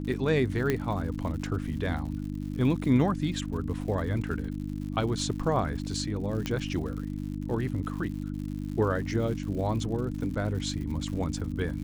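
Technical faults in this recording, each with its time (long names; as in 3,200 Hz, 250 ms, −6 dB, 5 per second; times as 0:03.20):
surface crackle 120 per second −38 dBFS
mains hum 50 Hz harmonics 6 −34 dBFS
0:00.70: click −13 dBFS
0:06.46: click −16 dBFS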